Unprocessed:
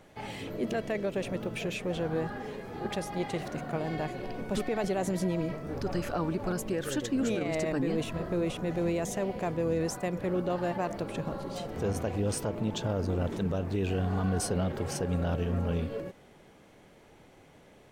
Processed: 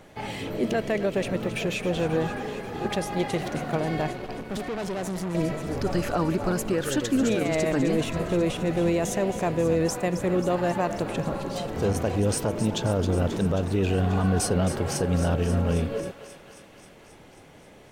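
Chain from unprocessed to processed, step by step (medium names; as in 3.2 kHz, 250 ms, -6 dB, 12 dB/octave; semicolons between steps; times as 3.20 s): thinning echo 268 ms, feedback 74%, high-pass 820 Hz, level -10.5 dB; 4.13–5.35 s: valve stage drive 33 dB, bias 0.65; trim +6 dB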